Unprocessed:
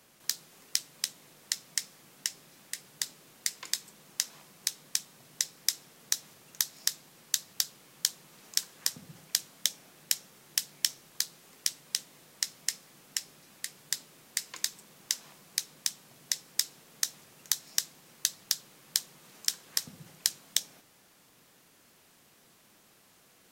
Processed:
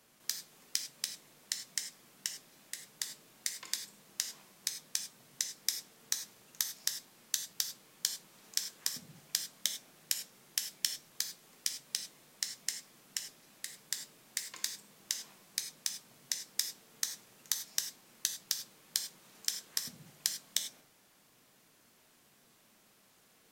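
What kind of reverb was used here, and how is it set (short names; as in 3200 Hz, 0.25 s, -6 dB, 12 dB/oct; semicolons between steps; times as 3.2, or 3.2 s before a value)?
non-linear reverb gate 0.12 s flat, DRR 6 dB; gain -5 dB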